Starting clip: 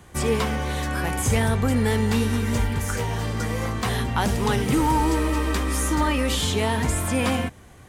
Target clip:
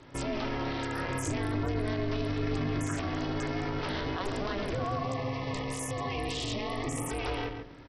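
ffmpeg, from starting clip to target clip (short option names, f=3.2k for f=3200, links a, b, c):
-filter_complex "[0:a]bandreject=f=60:t=h:w=6,bandreject=f=120:t=h:w=6,bandreject=f=180:t=h:w=6,bandreject=f=240:t=h:w=6,bandreject=f=300:t=h:w=6,bandreject=f=360:t=h:w=6,bandreject=f=420:t=h:w=6,bandreject=f=480:t=h:w=6,alimiter=limit=-22.5dB:level=0:latency=1:release=19,aeval=exprs='val(0)*sin(2*PI*200*n/s)':c=same,asettb=1/sr,asplit=3[a][b][c];[a]atrim=end=4.994[d];[b]atrim=start=4.99:end=7.1,asetpts=PTS-STARTPTS,afade=t=in:d=0.004:c=qsin,afade=t=out:st=2.106:d=0.004:c=qsin,asuperstop=centerf=1500:order=12:qfactor=3.4[e];[c]atrim=start=7.096[f];[d][e]acrossfade=d=0.004:c1=hsin:c2=qsin[g];[g][f]acrossfade=d=0.004:c1=qsin:c2=hsin,asplit=2[h][i];[i]adelay=138,lowpass=f=3.1k:p=1,volume=-7dB,asplit=2[j][k];[k]adelay=138,lowpass=f=3.1k:p=1,volume=0.2,asplit=2[l][m];[m]adelay=138,lowpass=f=3.1k:p=1,volume=0.2[n];[h][j][l][n]amix=inputs=4:normalize=0" -ar 44100 -c:a sbc -b:a 64k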